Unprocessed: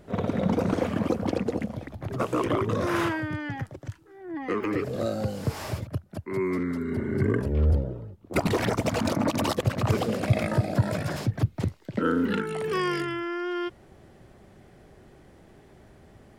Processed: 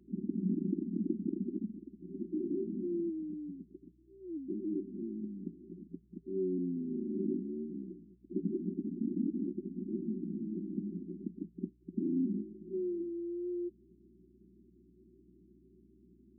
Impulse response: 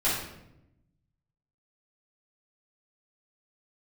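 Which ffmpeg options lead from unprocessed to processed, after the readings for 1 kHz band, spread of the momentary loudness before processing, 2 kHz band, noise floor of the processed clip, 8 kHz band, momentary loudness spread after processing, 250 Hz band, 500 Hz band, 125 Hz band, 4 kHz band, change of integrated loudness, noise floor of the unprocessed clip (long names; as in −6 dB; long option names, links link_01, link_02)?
below −40 dB, 10 LU, below −40 dB, −64 dBFS, below −35 dB, 12 LU, −6.0 dB, −12.0 dB, −17.5 dB, below −40 dB, −10.0 dB, −54 dBFS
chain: -af "afftfilt=real='re*between(b*sr/4096,170,390)':imag='im*between(b*sr/4096,170,390)':win_size=4096:overlap=0.75,aeval=exprs='val(0)+0.000891*(sin(2*PI*60*n/s)+sin(2*PI*2*60*n/s)/2+sin(2*PI*3*60*n/s)/3+sin(2*PI*4*60*n/s)/4+sin(2*PI*5*60*n/s)/5)':channel_layout=same,volume=-6dB"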